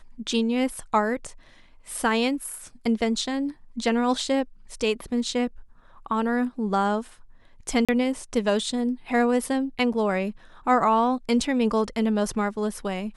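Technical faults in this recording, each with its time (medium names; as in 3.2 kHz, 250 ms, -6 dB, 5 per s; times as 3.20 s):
7.85–7.89 s: dropout 36 ms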